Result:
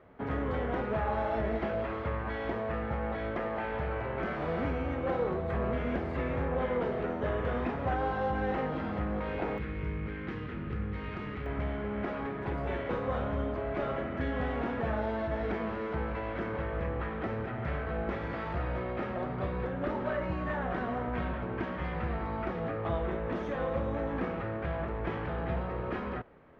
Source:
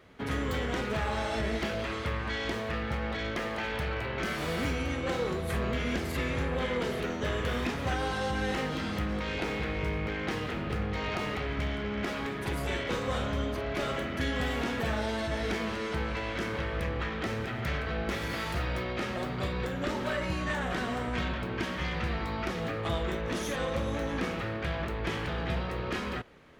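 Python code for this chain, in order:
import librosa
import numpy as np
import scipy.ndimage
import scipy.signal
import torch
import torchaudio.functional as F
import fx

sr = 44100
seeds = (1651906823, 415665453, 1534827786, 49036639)

y = scipy.signal.sosfilt(scipy.signal.butter(2, 1600.0, 'lowpass', fs=sr, output='sos'), x)
y = fx.peak_eq(y, sr, hz=700.0, db=fx.steps((0.0, 5.0), (9.58, -12.0), (11.46, 3.0)), octaves=1.1)
y = F.gain(torch.from_numpy(y), -1.5).numpy()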